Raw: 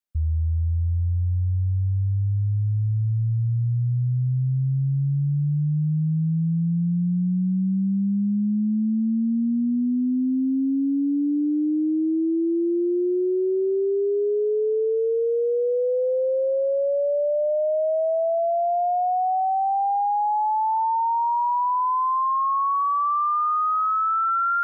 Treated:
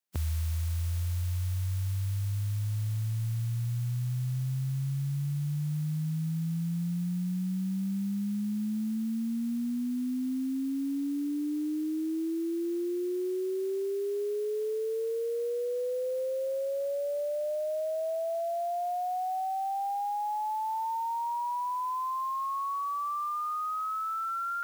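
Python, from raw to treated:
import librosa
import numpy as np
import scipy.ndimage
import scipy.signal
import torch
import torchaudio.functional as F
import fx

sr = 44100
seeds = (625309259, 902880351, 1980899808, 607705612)

y = fx.spec_flatten(x, sr, power=0.52)
y = scipy.signal.sosfilt(scipy.signal.butter(2, 120.0, 'highpass', fs=sr, output='sos'), y)
y = fx.rider(y, sr, range_db=10, speed_s=0.5)
y = F.gain(torch.from_numpy(y), -8.5).numpy()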